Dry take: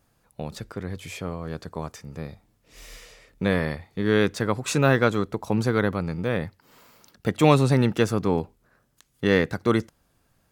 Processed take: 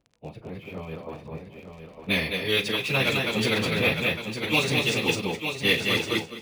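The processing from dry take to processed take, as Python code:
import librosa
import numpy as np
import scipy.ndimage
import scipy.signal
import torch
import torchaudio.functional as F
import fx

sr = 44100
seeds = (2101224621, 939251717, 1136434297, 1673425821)

y = fx.env_lowpass(x, sr, base_hz=530.0, full_db=-16.5)
y = fx.high_shelf_res(y, sr, hz=2000.0, db=8.0, q=3.0)
y = fx.echo_feedback(y, sr, ms=341, feedback_pct=17, wet_db=-4.5)
y = fx.stretch_vocoder_free(y, sr, factor=0.61)
y = fx.doubler(y, sr, ms=37.0, db=-12.0)
y = fx.dmg_crackle(y, sr, seeds[0], per_s=64.0, level_db=-50.0)
y = fx.tilt_eq(y, sr, slope=2.0)
y = fx.rider(y, sr, range_db=10, speed_s=0.5)
y = y + 10.0 ** (-7.5 / 20.0) * np.pad(y, (int(906 * sr / 1000.0), 0))[:len(y)]
y = np.interp(np.arange(len(y)), np.arange(len(y))[::3], y[::3])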